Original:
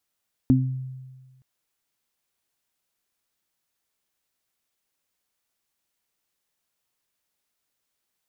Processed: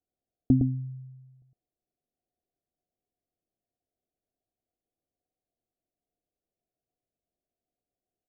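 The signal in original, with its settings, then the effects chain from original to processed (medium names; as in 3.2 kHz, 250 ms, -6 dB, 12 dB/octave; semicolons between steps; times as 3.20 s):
additive tone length 0.92 s, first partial 130 Hz, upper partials 5.5 dB, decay 1.45 s, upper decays 0.36 s, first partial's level -17 dB
rippled Chebyshev low-pass 750 Hz, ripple 3 dB; comb 2.8 ms, depth 33%; on a send: delay 110 ms -4.5 dB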